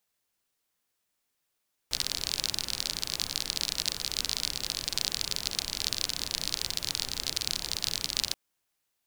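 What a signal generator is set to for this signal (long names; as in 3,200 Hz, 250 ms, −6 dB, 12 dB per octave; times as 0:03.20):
rain-like ticks over hiss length 6.43 s, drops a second 41, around 4,400 Hz, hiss −10 dB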